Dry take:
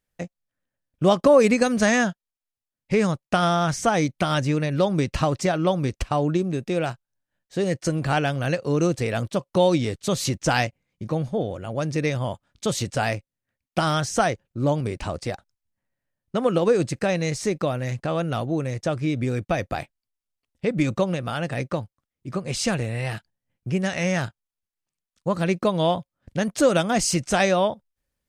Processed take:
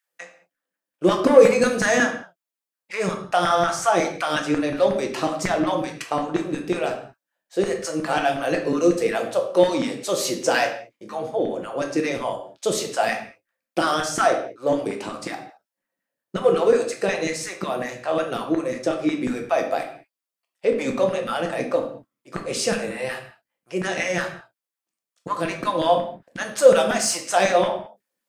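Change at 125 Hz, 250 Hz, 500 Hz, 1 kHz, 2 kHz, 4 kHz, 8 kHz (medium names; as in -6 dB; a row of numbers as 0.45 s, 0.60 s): -10.5 dB, -1.5 dB, +3.0 dB, +2.5 dB, +2.5 dB, +1.0 dB, +2.0 dB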